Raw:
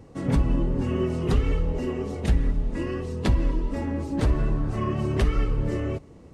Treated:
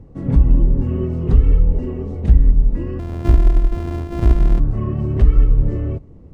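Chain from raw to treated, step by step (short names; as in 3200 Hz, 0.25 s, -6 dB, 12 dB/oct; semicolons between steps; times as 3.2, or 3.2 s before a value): 2.99–4.6 sample sorter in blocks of 128 samples; tilt -3.5 dB/oct; gain -4 dB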